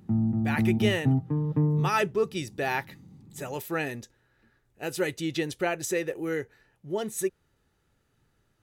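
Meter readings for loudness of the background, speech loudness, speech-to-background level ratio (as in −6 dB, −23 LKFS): −26.5 LKFS, −30.5 LKFS, −4.0 dB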